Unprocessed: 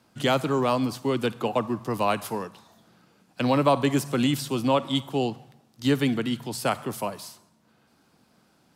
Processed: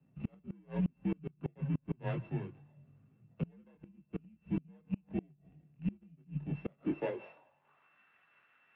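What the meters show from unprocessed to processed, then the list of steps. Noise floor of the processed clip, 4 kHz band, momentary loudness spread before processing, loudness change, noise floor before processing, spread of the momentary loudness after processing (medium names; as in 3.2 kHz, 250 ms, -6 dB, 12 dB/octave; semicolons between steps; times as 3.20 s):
-72 dBFS, under -30 dB, 10 LU, -14.0 dB, -64 dBFS, 13 LU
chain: sorted samples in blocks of 16 samples; treble shelf 2.2 kHz +11.5 dB; band-pass sweep 220 Hz -> 1.6 kHz, 6.54–7.97 s; mistuned SSB -76 Hz 180–3500 Hz; chorus voices 4, 0.26 Hz, delay 23 ms, depth 3.9 ms; distance through air 89 m; inverted gate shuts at -28 dBFS, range -32 dB; trim +5 dB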